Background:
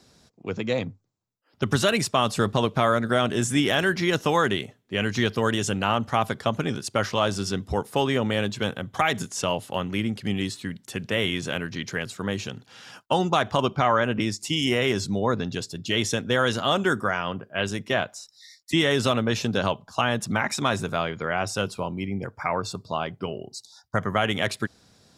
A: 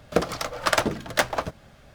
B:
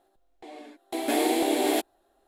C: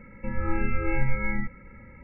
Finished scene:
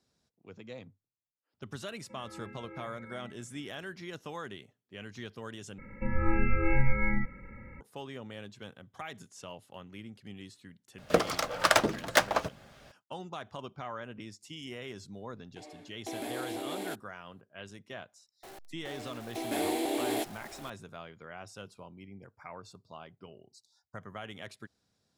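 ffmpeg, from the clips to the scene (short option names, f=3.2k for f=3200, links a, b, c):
-filter_complex "[3:a]asplit=2[a][b];[2:a]asplit=2[c][d];[0:a]volume=-19.5dB[e];[a]highpass=200,lowpass=2.3k[f];[1:a]lowshelf=f=130:g=-9[g];[c]acompressor=threshold=-27dB:ratio=6:attack=3.2:release=140:knee=1:detection=peak[h];[d]aeval=exprs='val(0)+0.5*0.0178*sgn(val(0))':c=same[i];[e]asplit=2[j][k];[j]atrim=end=5.784[l];[b]atrim=end=2.03,asetpts=PTS-STARTPTS,volume=-0.5dB[m];[k]atrim=start=7.806[n];[f]atrim=end=2.03,asetpts=PTS-STARTPTS,volume=-16.5dB,afade=t=in:d=0.004:c=hsin,afade=t=out:st=2.026:d=0.004:c=hsin,adelay=1860[o];[g]atrim=end=1.94,asetpts=PTS-STARTPTS,volume=-1.5dB,afade=t=in:d=0.004:c=hsin,afade=t=out:st=1.936:d=0.004:c=hsin,adelay=484218S[p];[h]atrim=end=2.27,asetpts=PTS-STARTPTS,volume=-7dB,afade=t=in:d=0.004:c=hsin,afade=t=out:st=2.266:d=0.004:c=hsin,adelay=15140[q];[i]atrim=end=2.27,asetpts=PTS-STARTPTS,volume=-8dB,afade=t=in:d=0.004:c=hsin,afade=t=out:st=2.266:d=0.004:c=hsin,adelay=18430[r];[l][m]acrossfade=d=0.004:c1=hsin:c2=hsin[s];[s][n]acrossfade=d=0.004:c1=hsin:c2=hsin[t];[t][o][p][q][r]amix=inputs=5:normalize=0"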